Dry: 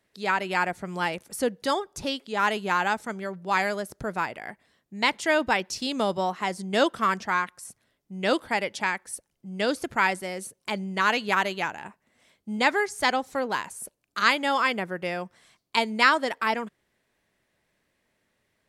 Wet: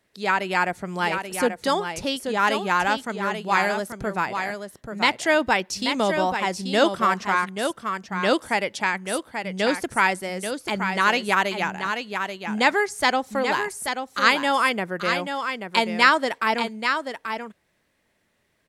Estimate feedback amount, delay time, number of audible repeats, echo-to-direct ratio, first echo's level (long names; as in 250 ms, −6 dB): repeats not evenly spaced, 834 ms, 1, −7.0 dB, −7.0 dB